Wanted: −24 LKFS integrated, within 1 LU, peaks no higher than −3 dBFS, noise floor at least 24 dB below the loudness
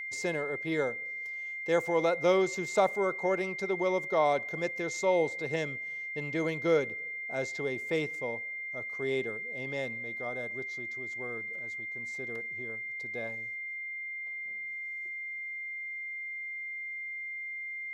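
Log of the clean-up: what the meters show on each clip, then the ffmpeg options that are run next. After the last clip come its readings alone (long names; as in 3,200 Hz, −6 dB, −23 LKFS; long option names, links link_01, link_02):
interfering tone 2,100 Hz; level of the tone −36 dBFS; integrated loudness −32.5 LKFS; sample peak −13.5 dBFS; target loudness −24.0 LKFS
→ -af "bandreject=frequency=2100:width=30"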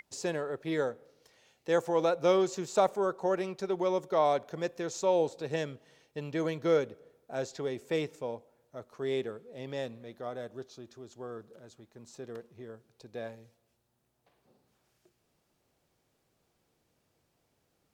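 interfering tone none found; integrated loudness −32.0 LKFS; sample peak −13.0 dBFS; target loudness −24.0 LKFS
→ -af "volume=8dB"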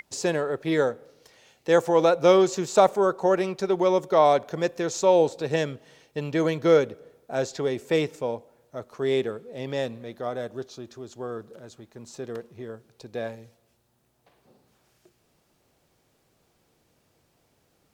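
integrated loudness −24.0 LKFS; sample peak −5.0 dBFS; background noise floor −68 dBFS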